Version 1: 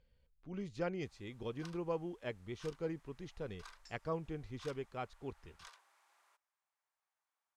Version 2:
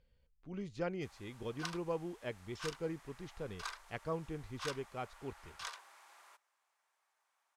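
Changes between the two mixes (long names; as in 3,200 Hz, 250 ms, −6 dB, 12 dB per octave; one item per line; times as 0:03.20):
first sound +11.5 dB
second sound: entry −1.30 s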